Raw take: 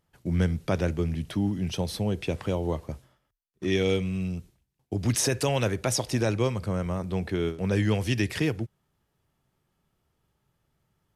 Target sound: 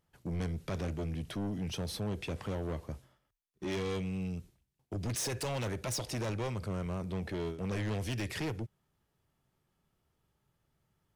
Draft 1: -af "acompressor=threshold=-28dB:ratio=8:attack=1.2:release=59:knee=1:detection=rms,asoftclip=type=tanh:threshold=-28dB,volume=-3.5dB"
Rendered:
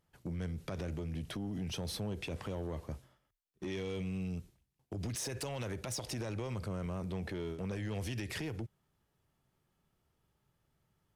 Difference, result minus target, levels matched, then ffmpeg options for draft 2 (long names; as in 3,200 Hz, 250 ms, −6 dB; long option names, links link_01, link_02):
downward compressor: peak gain reduction +11 dB
-af "asoftclip=type=tanh:threshold=-28dB,volume=-3.5dB"